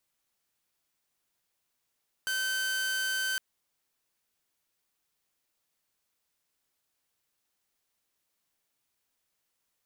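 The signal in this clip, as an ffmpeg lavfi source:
ffmpeg -f lavfi -i "aevalsrc='0.0501*(2*mod(1540*t,1)-1)':duration=1.11:sample_rate=44100" out.wav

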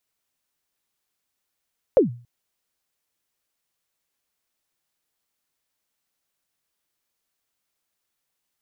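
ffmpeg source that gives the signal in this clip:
ffmpeg -f lavfi -i "aevalsrc='0.398*pow(10,-3*t/0.39)*sin(2*PI*(590*0.128/log(120/590)*(exp(log(120/590)*min(t,0.128)/0.128)-1)+120*max(t-0.128,0)))':duration=0.28:sample_rate=44100" out.wav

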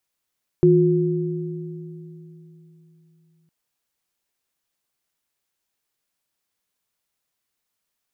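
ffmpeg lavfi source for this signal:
ffmpeg -f lavfi -i "aevalsrc='0.178*pow(10,-3*t/3.8)*sin(2*PI*162*t)+0.282*pow(10,-3*t/2.6)*sin(2*PI*358*t)':duration=2.86:sample_rate=44100" out.wav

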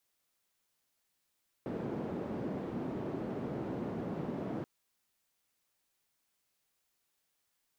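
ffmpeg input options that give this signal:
ffmpeg -f lavfi -i "anoisesrc=color=white:duration=2.98:sample_rate=44100:seed=1,highpass=frequency=170,lowpass=frequency=310,volume=-12.1dB" out.wav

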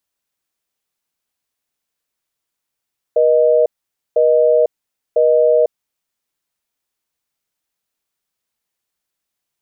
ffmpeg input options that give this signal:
ffmpeg -f lavfi -i "aevalsrc='0.251*(sin(2*PI*480*t)+sin(2*PI*620*t))*clip(min(mod(t,1),0.5-mod(t,1))/0.005,0,1)':duration=2.9:sample_rate=44100" out.wav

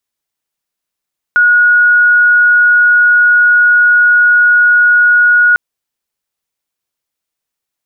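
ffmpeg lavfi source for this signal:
ffmpeg -f lavfi -i "aevalsrc='0.596*sin(2*PI*1450*t)':duration=4.2:sample_rate=44100" out.wav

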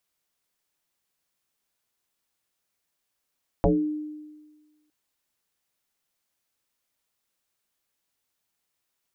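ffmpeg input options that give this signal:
ffmpeg -f lavfi -i "aevalsrc='0.178*pow(10,-3*t/1.4)*sin(2*PI*303*t+4.1*pow(10,-3*t/0.36)*sin(2*PI*0.43*303*t))':duration=1.26:sample_rate=44100" out.wav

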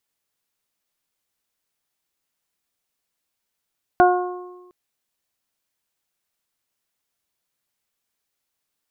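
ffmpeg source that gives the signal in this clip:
ffmpeg -f lavfi -i "aevalsrc='0.188*pow(10,-3*t/1.27)*sin(2*PI*360*t)+0.335*pow(10,-3*t/0.76)*sin(2*PI*720*t)+0.0944*pow(10,-3*t/1.19)*sin(2*PI*1080*t)+0.112*pow(10,-3*t/0.57)*sin(2*PI*1440*t)':duration=0.71:sample_rate=44100" out.wav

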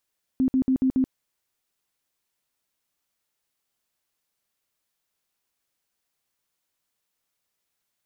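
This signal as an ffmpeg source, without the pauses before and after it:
ffmpeg -f lavfi -i "aevalsrc='0.133*sin(2*PI*261*mod(t,0.14))*lt(mod(t,0.14),21/261)':duration=0.7:sample_rate=44100" out.wav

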